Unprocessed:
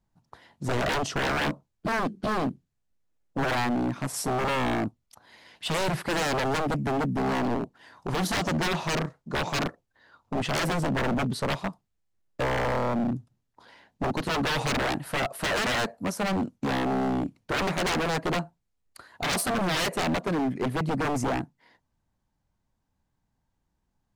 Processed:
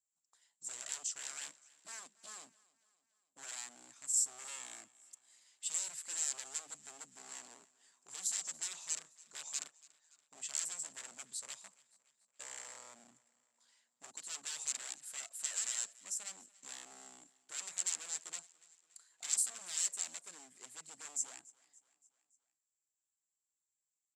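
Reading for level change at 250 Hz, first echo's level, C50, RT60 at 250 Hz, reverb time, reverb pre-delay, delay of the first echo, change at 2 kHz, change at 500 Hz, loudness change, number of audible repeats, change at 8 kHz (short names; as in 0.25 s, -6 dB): under -40 dB, -22.5 dB, none, none, none, none, 0.285 s, -22.5 dB, -34.0 dB, -11.5 dB, 3, +3.0 dB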